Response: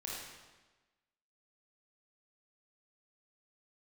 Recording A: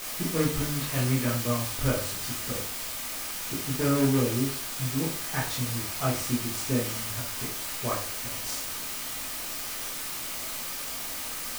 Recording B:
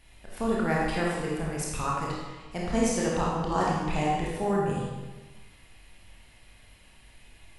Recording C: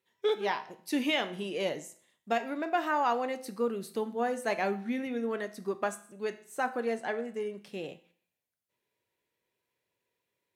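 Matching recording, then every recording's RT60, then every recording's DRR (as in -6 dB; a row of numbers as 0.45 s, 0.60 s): B; 0.40 s, 1.2 s, 0.55 s; -5.0 dB, -5.0 dB, 8.5 dB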